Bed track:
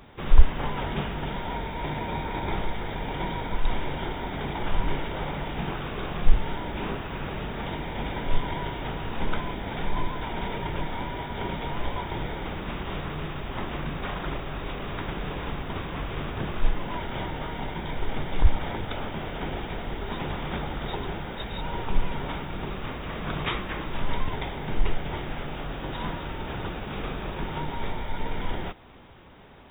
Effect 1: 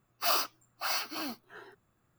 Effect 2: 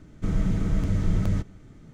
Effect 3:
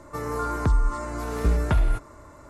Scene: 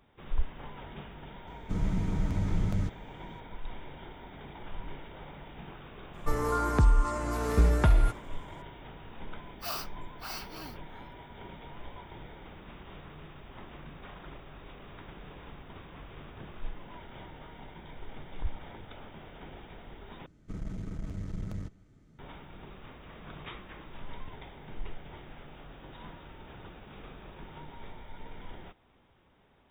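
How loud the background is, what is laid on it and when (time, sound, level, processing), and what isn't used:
bed track -15 dB
1.47 add 2 -5.5 dB
6.13 add 3 -1 dB + expander -43 dBFS
9.4 add 1 -8.5 dB
20.26 replace with 2 -11.5 dB + one diode to ground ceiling -24 dBFS

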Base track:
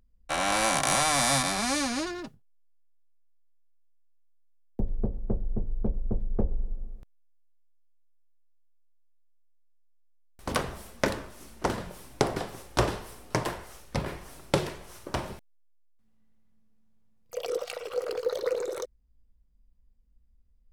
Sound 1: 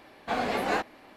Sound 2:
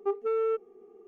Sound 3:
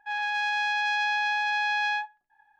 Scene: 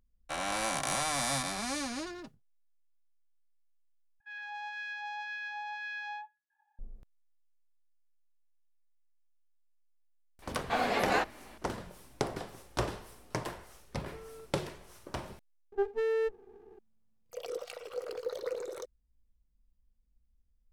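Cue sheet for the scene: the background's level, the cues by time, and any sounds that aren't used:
base track -7.5 dB
4.2 replace with 3 -17.5 dB + LFO high-pass sine 1.9 Hz 700–1800 Hz
10.42 add 1 + low shelf 400 Hz -4.5 dB
13.89 add 2 -17 dB + limiter -27.5 dBFS
15.72 add 2 -1.5 dB + running maximum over 17 samples

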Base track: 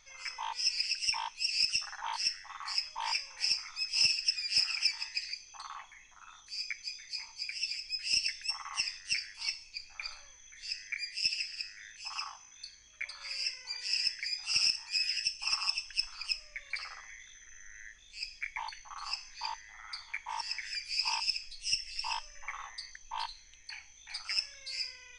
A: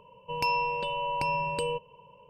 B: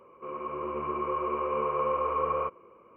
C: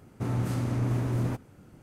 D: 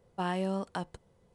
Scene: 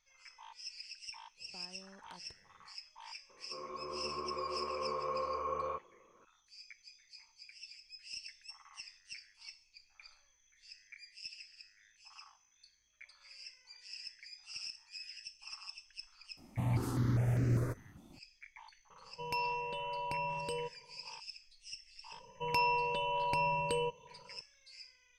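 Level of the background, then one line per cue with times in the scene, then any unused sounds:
base track -16 dB
1.36 add D -7 dB, fades 0.05 s + compressor, threshold -46 dBFS
3.29 add B -9 dB
16.37 add C -1.5 dB + step phaser 5 Hz 450–3400 Hz
18.9 add A -8.5 dB + high shelf 11000 Hz +3 dB
22.12 add A -3.5 dB

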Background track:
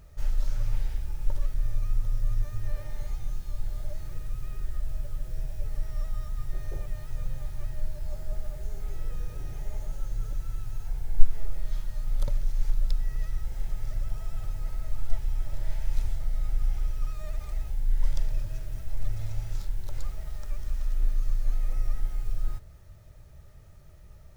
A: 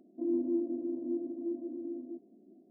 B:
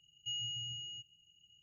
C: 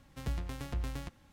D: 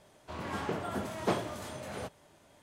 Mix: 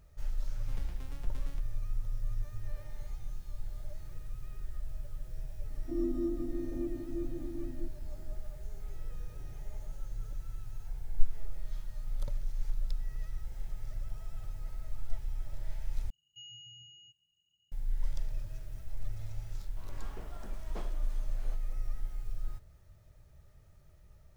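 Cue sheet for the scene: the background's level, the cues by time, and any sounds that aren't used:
background track -8 dB
0.51 add C -10.5 dB
5.7 add A -2.5 dB
16.1 replace with B -10.5 dB
19.48 add D -16 dB

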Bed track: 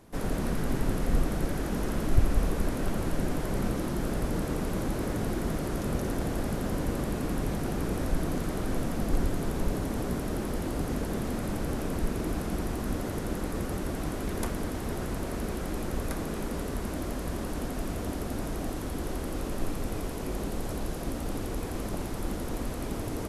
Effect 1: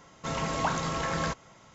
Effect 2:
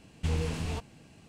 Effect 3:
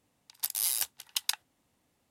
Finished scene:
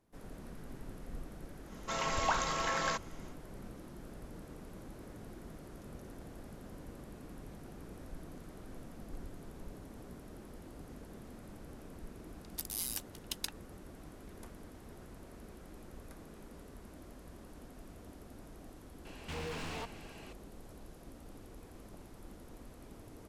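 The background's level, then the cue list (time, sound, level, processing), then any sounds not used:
bed track -19 dB
1.64 add 1 -1 dB, fades 0.10 s + HPF 610 Hz 6 dB/oct
12.15 add 3 -9 dB
19.05 add 2 -15 dB + overdrive pedal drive 32 dB, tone 2600 Hz, clips at -18 dBFS

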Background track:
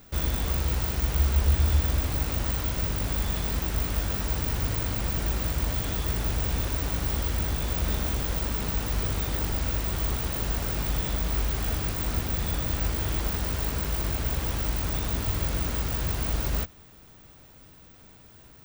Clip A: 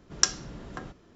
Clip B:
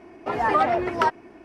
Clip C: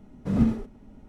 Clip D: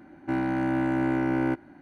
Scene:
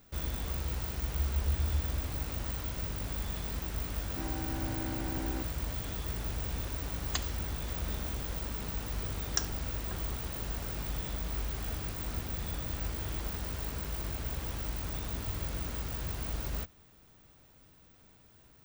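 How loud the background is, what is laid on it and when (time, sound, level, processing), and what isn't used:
background track -8.5 dB
3.88 add D -15 dB + bell 720 Hz +3.5 dB
6.92 add A -3 dB + spectral gate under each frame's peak -15 dB weak
9.14 add A -9.5 dB
not used: B, C

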